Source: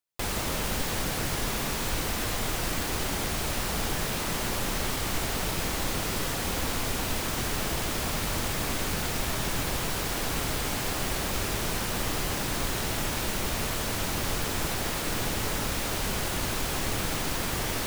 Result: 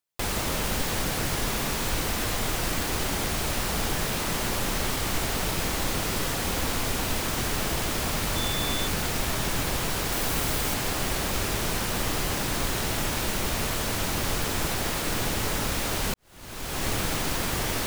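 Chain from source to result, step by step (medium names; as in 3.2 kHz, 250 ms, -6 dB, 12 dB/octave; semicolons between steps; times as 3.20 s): 8.35–8.86 s: whistle 3.5 kHz -34 dBFS; 10.12–10.74 s: treble shelf 11 kHz +5.5 dB; 16.14–16.86 s: fade in quadratic; trim +2 dB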